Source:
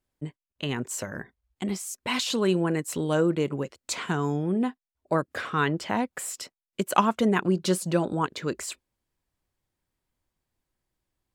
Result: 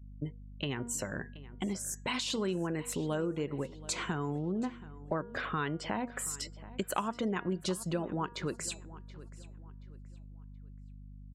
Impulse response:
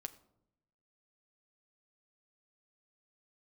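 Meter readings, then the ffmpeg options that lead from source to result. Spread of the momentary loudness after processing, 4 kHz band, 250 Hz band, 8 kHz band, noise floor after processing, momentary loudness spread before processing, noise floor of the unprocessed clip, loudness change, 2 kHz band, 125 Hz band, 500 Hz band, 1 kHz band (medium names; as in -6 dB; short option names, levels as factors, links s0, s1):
18 LU, -6.0 dB, -8.5 dB, -4.0 dB, -49 dBFS, 12 LU, under -85 dBFS, -8.0 dB, -7.0 dB, -7.0 dB, -9.0 dB, -9.5 dB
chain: -filter_complex "[0:a]aeval=exprs='val(0)+0.00447*(sin(2*PI*50*n/s)+sin(2*PI*2*50*n/s)/2+sin(2*PI*3*50*n/s)/3+sin(2*PI*4*50*n/s)/4+sin(2*PI*5*50*n/s)/5)':c=same,bandreject=f=237.5:t=h:w=4,bandreject=f=475:t=h:w=4,bandreject=f=712.5:t=h:w=4,bandreject=f=950:t=h:w=4,bandreject=f=1187.5:t=h:w=4,bandreject=f=1425:t=h:w=4,bandreject=f=1662.5:t=h:w=4,bandreject=f=1900:t=h:w=4,bandreject=f=2137.5:t=h:w=4,bandreject=f=2375:t=h:w=4,bandreject=f=2612.5:t=h:w=4,bandreject=f=2850:t=h:w=4,bandreject=f=3087.5:t=h:w=4,bandreject=f=3325:t=h:w=4,bandreject=f=3562.5:t=h:w=4,bandreject=f=3800:t=h:w=4,bandreject=f=4037.5:t=h:w=4,bandreject=f=4275:t=h:w=4,bandreject=f=4512.5:t=h:w=4,bandreject=f=4750:t=h:w=4,bandreject=f=4987.5:t=h:w=4,bandreject=f=5225:t=h:w=4,bandreject=f=5462.5:t=h:w=4,bandreject=f=5700:t=h:w=4,bandreject=f=5937.5:t=h:w=4,bandreject=f=6175:t=h:w=4,bandreject=f=6412.5:t=h:w=4,bandreject=f=6650:t=h:w=4,bandreject=f=6887.5:t=h:w=4,bandreject=f=7125:t=h:w=4,bandreject=f=7362.5:t=h:w=4,bandreject=f=7600:t=h:w=4,bandreject=f=7837.5:t=h:w=4,afftdn=nr=25:nf=-47,acompressor=threshold=0.0224:ratio=3,asplit=2[s0][s1];[s1]adelay=727,lowpass=f=5000:p=1,volume=0.126,asplit=2[s2][s3];[s3]adelay=727,lowpass=f=5000:p=1,volume=0.34,asplit=2[s4][s5];[s5]adelay=727,lowpass=f=5000:p=1,volume=0.34[s6];[s0][s2][s4][s6]amix=inputs=4:normalize=0"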